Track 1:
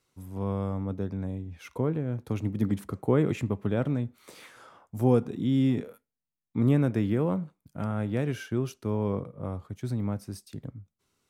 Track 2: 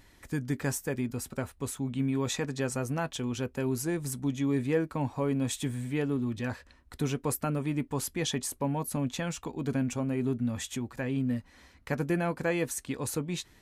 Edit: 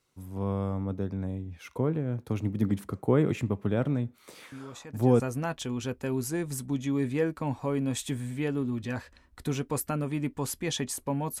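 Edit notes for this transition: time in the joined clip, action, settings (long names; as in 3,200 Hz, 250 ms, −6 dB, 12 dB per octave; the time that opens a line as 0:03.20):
track 1
0:04.52: mix in track 2 from 0:02.06 0.68 s −13.5 dB
0:05.20: continue with track 2 from 0:02.74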